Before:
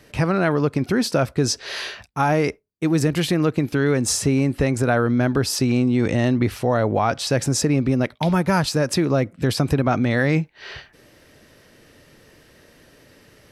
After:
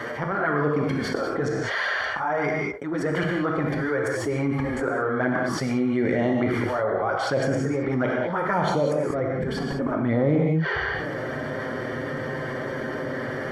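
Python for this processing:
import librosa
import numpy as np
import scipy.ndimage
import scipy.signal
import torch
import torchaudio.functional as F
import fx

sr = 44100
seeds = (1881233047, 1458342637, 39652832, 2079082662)

y = fx.highpass(x, sr, hz=fx.steps((0.0, 940.0), (9.1, 220.0)), slope=6)
y = fx.auto_swell(y, sr, attack_ms=444.0)
y = fx.env_flanger(y, sr, rest_ms=9.4, full_db=-24.0)
y = scipy.signal.savgol_filter(y, 41, 4, mode='constant')
y = fx.rev_gated(y, sr, seeds[0], gate_ms=230, shape='flat', drr_db=0.5)
y = fx.env_flatten(y, sr, amount_pct=70)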